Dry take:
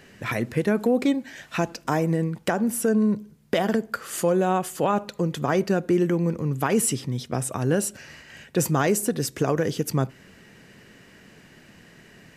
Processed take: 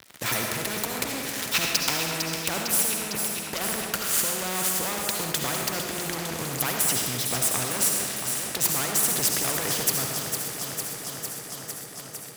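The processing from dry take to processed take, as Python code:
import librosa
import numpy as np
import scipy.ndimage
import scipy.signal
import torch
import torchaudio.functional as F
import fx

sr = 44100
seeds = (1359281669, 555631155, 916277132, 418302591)

p1 = fx.diode_clip(x, sr, knee_db=-24.0)
p2 = fx.over_compress(p1, sr, threshold_db=-29.0, ratio=-1.0)
p3 = fx.band_shelf(p2, sr, hz=3500.0, db=11.5, octaves=1.7, at=(1.42, 1.97))
p4 = np.sign(p3) * np.maximum(np.abs(p3) - 10.0 ** (-41.0 / 20.0), 0.0)
p5 = scipy.signal.sosfilt(scipy.signal.butter(4, 63.0, 'highpass', fs=sr, output='sos'), p4)
p6 = fx.high_shelf(p5, sr, hz=6200.0, db=12.0)
p7 = p6 + fx.echo_alternate(p6, sr, ms=227, hz=2100.0, feedback_pct=79, wet_db=-10, dry=0)
p8 = fx.rev_freeverb(p7, sr, rt60_s=0.89, hf_ratio=0.9, predelay_ms=30, drr_db=4.0)
y = fx.spectral_comp(p8, sr, ratio=2.0)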